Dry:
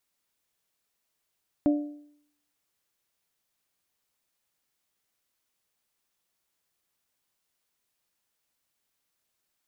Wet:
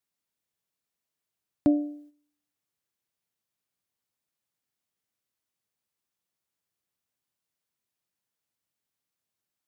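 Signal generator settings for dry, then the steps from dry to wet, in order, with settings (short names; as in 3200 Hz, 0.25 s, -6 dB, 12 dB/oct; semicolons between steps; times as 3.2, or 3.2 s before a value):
metal hit bell, lowest mode 294 Hz, modes 3, decay 0.67 s, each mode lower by 9.5 dB, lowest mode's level -17 dB
HPF 94 Hz; low shelf 210 Hz +9.5 dB; gate -51 dBFS, range -8 dB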